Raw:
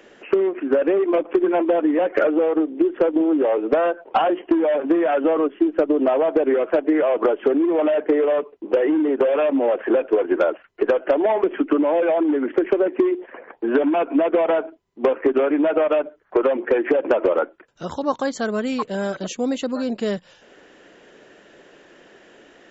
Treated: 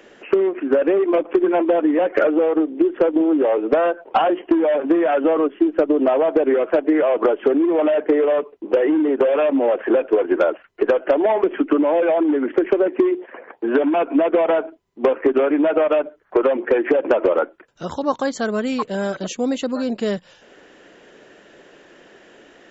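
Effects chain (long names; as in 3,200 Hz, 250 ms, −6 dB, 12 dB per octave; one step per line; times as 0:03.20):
0:13.17–0:13.94: high-pass filter 140 Hz 6 dB per octave
level +1.5 dB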